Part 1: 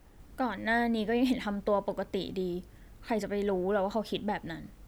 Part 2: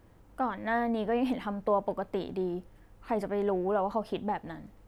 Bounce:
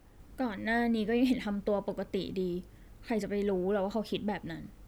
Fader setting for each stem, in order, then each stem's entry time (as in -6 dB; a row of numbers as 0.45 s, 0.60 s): -2.0 dB, -8.5 dB; 0.00 s, 0.00 s